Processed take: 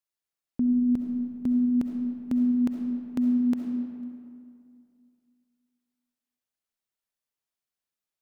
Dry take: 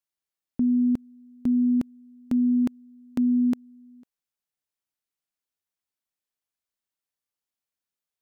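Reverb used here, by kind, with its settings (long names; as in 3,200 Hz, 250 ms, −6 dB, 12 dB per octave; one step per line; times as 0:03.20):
comb and all-pass reverb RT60 2.4 s, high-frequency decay 0.6×, pre-delay 25 ms, DRR 3.5 dB
level −2 dB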